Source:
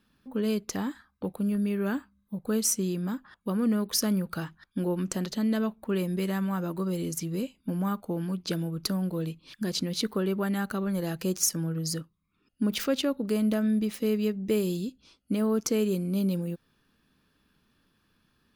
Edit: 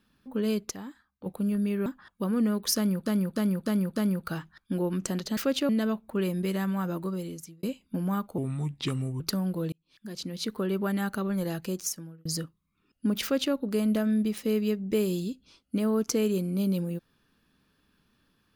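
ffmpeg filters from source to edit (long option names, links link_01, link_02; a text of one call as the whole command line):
ffmpeg -i in.wav -filter_complex "[0:a]asplit=15[link_01][link_02][link_03][link_04][link_05][link_06][link_07][link_08][link_09][link_10][link_11][link_12][link_13][link_14][link_15];[link_01]atrim=end=0.712[link_16];[link_02]atrim=start=0.708:end=1.262,asetpts=PTS-STARTPTS,volume=-9.5dB[link_17];[link_03]atrim=start=1.258:end=1.862[link_18];[link_04]atrim=start=3.118:end=4.322[link_19];[link_05]atrim=start=4.018:end=4.322[link_20];[link_06]atrim=start=4.018:end=4.322[link_21];[link_07]atrim=start=4.018:end=4.322[link_22];[link_08]atrim=start=4.018:end=5.432[link_23];[link_09]atrim=start=12.788:end=13.112[link_24];[link_10]atrim=start=5.428:end=7.37,asetpts=PTS-STARTPTS,afade=type=out:start_time=1.272:duration=0.67[link_25];[link_11]atrim=start=7.37:end=8.124,asetpts=PTS-STARTPTS,afade=type=in:duration=0.004:curve=hsin[link_26];[link_12]atrim=start=8.12:end=8.77,asetpts=PTS-STARTPTS,asetrate=34839,aresample=44100[link_27];[link_13]atrim=start=8.766:end=9.29,asetpts=PTS-STARTPTS,afade=type=out:start_time=0.52:duration=0.004:curve=hsin[link_28];[link_14]atrim=start=9.29:end=11.82,asetpts=PTS-STARTPTS,afade=type=in:duration=1.08,afade=type=out:start_time=1.73:duration=0.8[link_29];[link_15]atrim=start=11.82,asetpts=PTS-STARTPTS,afade=type=in:duration=0.004:curve=hsin[link_30];[link_16][link_17]acrossfade=duration=0.004:curve1=hsin:curve2=hsin[link_31];[link_31][link_18]acrossfade=duration=0.004:curve1=hsin:curve2=hsin[link_32];[link_32][link_19]acrossfade=duration=0.004:curve1=hsin:curve2=hsin[link_33];[link_33][link_20]acrossfade=duration=0.004:curve1=hsin:curve2=hsin[link_34];[link_34][link_21]acrossfade=duration=0.004:curve1=hsin:curve2=hsin[link_35];[link_35][link_22]acrossfade=duration=0.004:curve1=hsin:curve2=hsin[link_36];[link_36][link_23]acrossfade=duration=0.004:curve1=hsin:curve2=hsin[link_37];[link_37][link_24]acrossfade=duration=0.004:curve1=hsin:curve2=hsin[link_38];[link_25][link_26]concat=n=2:v=0:a=1[link_39];[link_38][link_39]acrossfade=duration=0.004:curve1=hsin:curve2=hsin[link_40];[link_40][link_27]acrossfade=duration=0.004:curve1=hsin:curve2=hsin[link_41];[link_28][link_29][link_30]concat=n=3:v=0:a=1[link_42];[link_41][link_42]acrossfade=duration=0.004:curve1=hsin:curve2=hsin" out.wav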